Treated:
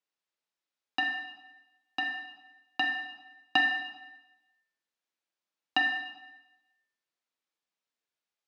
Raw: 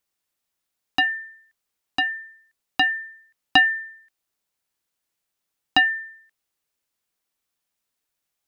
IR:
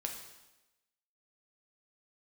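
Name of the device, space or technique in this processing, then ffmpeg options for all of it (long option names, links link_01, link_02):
supermarket ceiling speaker: -filter_complex "[0:a]highpass=210,lowpass=5300[link_01];[1:a]atrim=start_sample=2205[link_02];[link_01][link_02]afir=irnorm=-1:irlink=0,volume=-6.5dB"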